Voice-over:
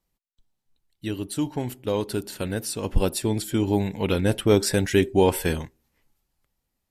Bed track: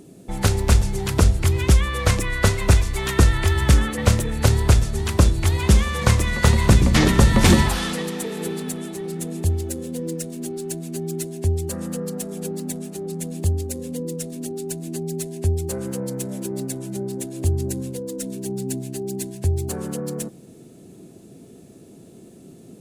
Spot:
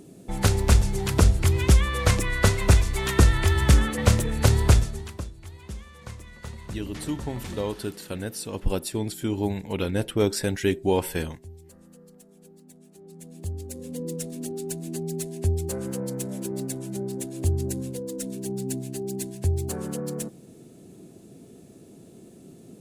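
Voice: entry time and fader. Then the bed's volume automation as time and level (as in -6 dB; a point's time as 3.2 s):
5.70 s, -4.0 dB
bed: 4.77 s -2 dB
5.31 s -23 dB
12.66 s -23 dB
14.1 s -3 dB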